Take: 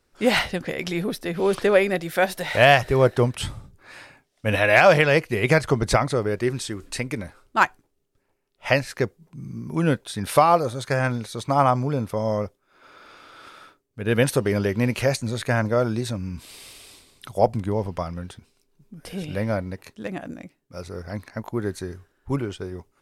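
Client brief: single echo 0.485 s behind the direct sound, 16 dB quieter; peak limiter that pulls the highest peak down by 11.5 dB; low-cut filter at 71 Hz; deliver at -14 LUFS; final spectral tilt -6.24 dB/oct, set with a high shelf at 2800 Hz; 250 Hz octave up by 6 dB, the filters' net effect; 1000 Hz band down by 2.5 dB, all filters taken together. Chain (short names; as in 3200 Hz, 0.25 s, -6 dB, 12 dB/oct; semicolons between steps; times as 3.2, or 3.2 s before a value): HPF 71 Hz; bell 250 Hz +8 dB; bell 1000 Hz -3.5 dB; high shelf 2800 Hz -6 dB; limiter -13.5 dBFS; echo 0.485 s -16 dB; gain +12 dB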